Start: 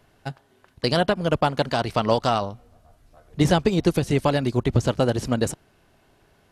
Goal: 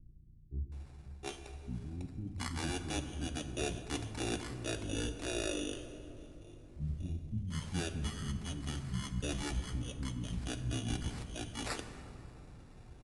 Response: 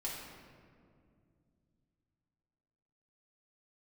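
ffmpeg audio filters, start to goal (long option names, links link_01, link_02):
-filter_complex "[0:a]highshelf=frequency=6300:gain=-11,areverse,acompressor=threshold=-33dB:ratio=16,areverse,acrusher=samples=7:mix=1:aa=0.000001,aeval=exprs='val(0)+0.002*(sin(2*PI*60*n/s)+sin(2*PI*2*60*n/s)/2+sin(2*PI*3*60*n/s)/3+sin(2*PI*4*60*n/s)/4+sin(2*PI*5*60*n/s)/5)':channel_layout=same,acrusher=bits=8:mode=log:mix=0:aa=0.000001,acrossover=split=500[link_01][link_02];[link_02]adelay=360[link_03];[link_01][link_03]amix=inputs=2:normalize=0,asplit=2[link_04][link_05];[1:a]atrim=start_sample=2205[link_06];[link_05][link_06]afir=irnorm=-1:irlink=0,volume=-3.5dB[link_07];[link_04][link_07]amix=inputs=2:normalize=0,asetrate=22050,aresample=44100,adynamicequalizer=threshold=0.00141:dfrequency=1700:dqfactor=0.7:tfrequency=1700:tqfactor=0.7:attack=5:release=100:ratio=0.375:range=3.5:mode=boostabove:tftype=highshelf,volume=-3.5dB"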